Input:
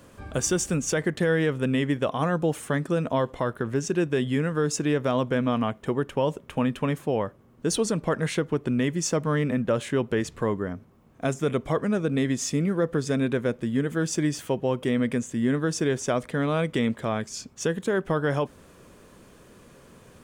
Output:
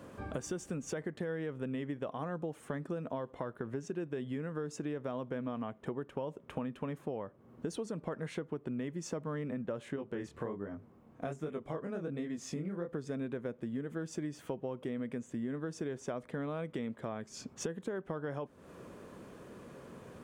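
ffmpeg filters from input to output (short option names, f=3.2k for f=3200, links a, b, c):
-filter_complex "[0:a]asettb=1/sr,asplit=3[a][b][c];[a]atrim=end=9.964[d];[b]atrim=start=9.96:end=12.89,asetpts=PTS-STARTPTS,afade=t=in:d=0.004:c=qsin,afade=t=out:st=2.926:d=0.004:c=qsin,flanger=delay=19:depth=7.7:speed=1.3[e];[c]atrim=start=12.886[f];[d][e]acrossfade=d=0.004:c1=hsin:c2=qsin[g];[g][f]acrossfade=d=0.004:c1=qsin:c2=hsin,highpass=f=150:p=1,highshelf=f=2.1k:g=-11.5,acompressor=threshold=-40dB:ratio=5,volume=3dB"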